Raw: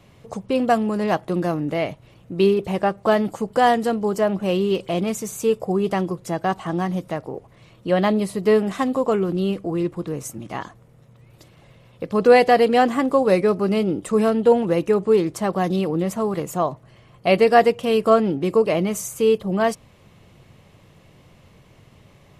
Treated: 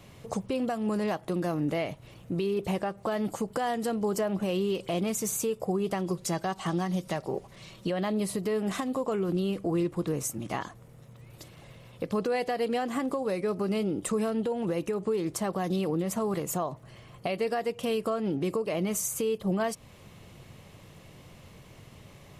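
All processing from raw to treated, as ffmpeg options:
ffmpeg -i in.wav -filter_complex "[0:a]asettb=1/sr,asplit=3[link_01][link_02][link_03];[link_01]atrim=end=6.064[link_04];[link_02]atrim=start=6.06:end=7.9,asetpts=PTS-STARTPTS,afade=type=in:duration=0.004:curve=qsin,afade=type=out:start_time=1.836:duration=0.004:curve=qsin,equalizer=frequency=5000:width=0.72:gain=6.5,aecho=1:1:5.2:0.38,atrim=end_sample=81144[link_05];[link_03]atrim=start=7.896[link_06];[link_04][link_05]acrossfade=duration=0.004:curve1=hsin:curve2=qsin[link_07];[link_07][link_06]acrossfade=duration=0.004:curve1=qsin:curve2=hsin,highshelf=frequency=5100:gain=6,acompressor=threshold=-21dB:ratio=5,alimiter=limit=-20.5dB:level=0:latency=1:release=262" out.wav

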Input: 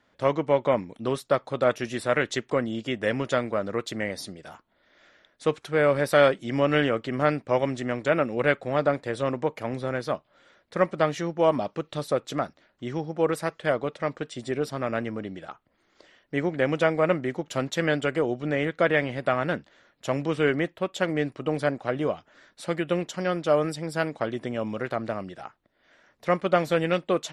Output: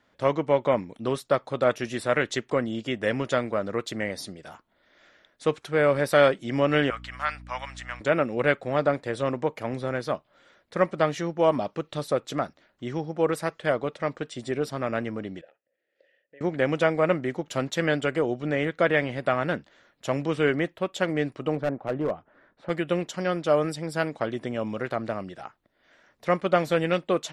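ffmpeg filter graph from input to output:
ffmpeg -i in.wav -filter_complex "[0:a]asettb=1/sr,asplit=3[link_01][link_02][link_03];[link_01]atrim=end=6.904[link_04];[link_02]atrim=start=6.9:end=8.01,asetpts=PTS-STARTPTS,afade=type=in:duration=0.004:curve=qsin,afade=type=out:start_time=1.106:duration=0.004:curve=qsin,highpass=frequency=950:width=0.5412,highpass=frequency=950:width=1.3066,aeval=exprs='val(0)+0.00708*(sin(2*PI*60*n/s)+sin(2*PI*2*60*n/s)/2+sin(2*PI*3*60*n/s)/3+sin(2*PI*4*60*n/s)/4+sin(2*PI*5*60*n/s)/5)':channel_layout=same[link_05];[link_03]atrim=start=8.006[link_06];[link_04][link_05]acrossfade=duration=0.004:curve1=hsin:curve2=qsin[link_07];[link_07][link_06]acrossfade=duration=0.004:curve1=qsin:curve2=hsin,asettb=1/sr,asplit=3[link_08][link_09][link_10];[link_08]atrim=end=15.414[link_11];[link_09]atrim=start=15.41:end=16.41,asetpts=PTS-STARTPTS,afade=type=in:duration=0.004:curve=qsin,afade=type=out:start_time=0.996:duration=0.004:curve=qsin,asubboost=boost=3.5:cutoff=170,acompressor=threshold=-37dB:ratio=3:attack=3.2:release=140:knee=1:detection=peak,asplit=3[link_12][link_13][link_14];[link_12]bandpass=frequency=530:width_type=q:width=8,volume=0dB[link_15];[link_13]bandpass=frequency=1840:width_type=q:width=8,volume=-6dB[link_16];[link_14]bandpass=frequency=2480:width_type=q:width=8,volume=-9dB[link_17];[link_15][link_16][link_17]amix=inputs=3:normalize=0[link_18];[link_10]atrim=start=16.406[link_19];[link_11][link_18]acrossfade=duration=0.004:curve1=hsin:curve2=qsin[link_20];[link_20][link_19]acrossfade=duration=0.004:curve1=qsin:curve2=hsin,asettb=1/sr,asplit=3[link_21][link_22][link_23];[link_21]atrim=end=21.554[link_24];[link_22]atrim=start=21.55:end=22.7,asetpts=PTS-STARTPTS,afade=type=in:duration=0.004:curve=qsin,afade=type=out:start_time=1.146:duration=0.004:curve=qsin,lowpass=1400,asoftclip=type=hard:threshold=-20.5dB[link_25];[link_23]atrim=start=22.696[link_26];[link_24][link_25]acrossfade=duration=0.004:curve1=hsin:curve2=qsin[link_27];[link_27][link_26]acrossfade=duration=0.004:curve1=qsin:curve2=hsin" out.wav

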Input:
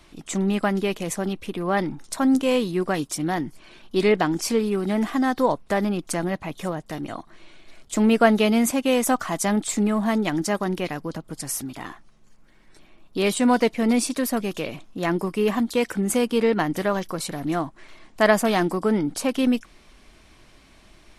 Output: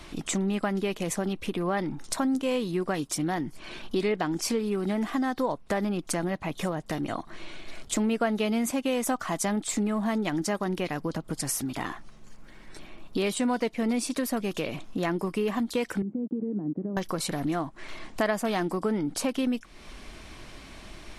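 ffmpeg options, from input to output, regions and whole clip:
ffmpeg -i in.wav -filter_complex "[0:a]asettb=1/sr,asplit=3[link_01][link_02][link_03];[link_01]atrim=end=16.024[link_04];[link_02]atrim=start=16.02:end=16.97,asetpts=PTS-STARTPTS,afade=type=in:duration=0.004:curve=qsin,afade=type=out:start_time=0.946:duration=0.004:curve=qsin,acompressor=threshold=-25dB:ratio=4:attack=3.2:release=140:knee=1:detection=peak,aeval=exprs='val(0)*gte(abs(val(0)),0.0158)':channel_layout=same,asuperpass=centerf=230:order=4:qfactor=1.1[link_05];[link_03]atrim=start=16.966[link_06];[link_04][link_05]acrossfade=duration=0.004:curve1=hsin:curve2=qsin[link_07];[link_07][link_06]acrossfade=duration=0.004:curve1=qsin:curve2=hsin,highshelf=frequency=9600:gain=-3.5,acompressor=threshold=-37dB:ratio=3,volume=7.5dB" out.wav

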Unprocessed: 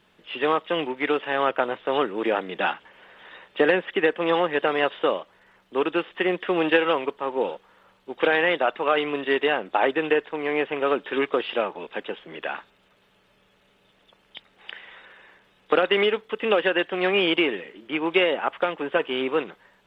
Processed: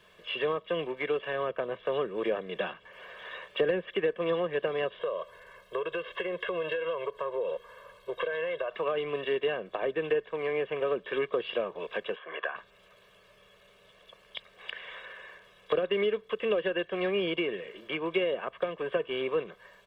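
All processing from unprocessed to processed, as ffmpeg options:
ffmpeg -i in.wav -filter_complex "[0:a]asettb=1/sr,asplit=3[link_01][link_02][link_03];[link_01]atrim=end=4.994[link_04];[link_02]atrim=start=4.99:end=8.71,asetpts=PTS-STARTPTS,afade=type=in:duration=0.004:curve=qsin,afade=type=out:start_time=3.716:duration=0.004:curve=qsin,bandreject=frequency=2400:width=11,aecho=1:1:1.9:0.83,atrim=end_sample=164052,acompressor=threshold=-28dB:ratio=4:attack=3.2:release=140:knee=1:detection=peak[link_05];[link_03]atrim=start=8.706[link_06];[link_04][link_05]acrossfade=duration=0.004:curve1=hsin:curve2=qsin[link_07];[link_07][link_06]acrossfade=duration=0.004:curve1=qsin:curve2=hsin,asettb=1/sr,asplit=3[link_08][link_09][link_10];[link_08]atrim=end=12.164[link_11];[link_09]atrim=start=12.16:end=12.56,asetpts=PTS-STARTPTS,afade=type=in:duration=0.004:curve=qsin,afade=type=out:start_time=0.396:duration=0.004:curve=qsin,tremolo=f=150:d=0.519,highpass=360,equalizer=frequency=740:width_type=q:width=4:gain=4,equalizer=frequency=1100:width_type=q:width=4:gain=10,equalizer=frequency=1600:width_type=q:width=4:gain=8,lowpass=frequency=3100:width=0.5412,lowpass=frequency=3100:width=1.3066[link_12];[link_10]atrim=start=12.556[link_13];[link_11][link_12]acrossfade=duration=0.004:curve1=hsin:curve2=qsin[link_14];[link_14][link_13]acrossfade=duration=0.004:curve1=qsin:curve2=hsin,acrossover=split=330[link_15][link_16];[link_16]acompressor=threshold=-36dB:ratio=6[link_17];[link_15][link_17]amix=inputs=2:normalize=0,bass=frequency=250:gain=-4,treble=frequency=4000:gain=1,aecho=1:1:1.8:0.73,volume=1dB" out.wav

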